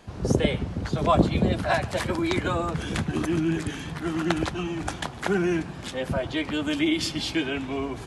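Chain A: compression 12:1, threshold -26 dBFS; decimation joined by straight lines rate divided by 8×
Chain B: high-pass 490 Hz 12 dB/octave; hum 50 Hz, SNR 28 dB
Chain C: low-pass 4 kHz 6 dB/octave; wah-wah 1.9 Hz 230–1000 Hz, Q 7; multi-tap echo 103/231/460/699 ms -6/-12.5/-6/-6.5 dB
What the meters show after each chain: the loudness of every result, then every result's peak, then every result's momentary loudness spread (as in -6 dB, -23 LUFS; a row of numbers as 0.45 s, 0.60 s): -32.0 LUFS, -30.5 LUFS, -36.5 LUFS; -14.0 dBFS, -9.5 dBFS, -17.0 dBFS; 3 LU, 9 LU, 8 LU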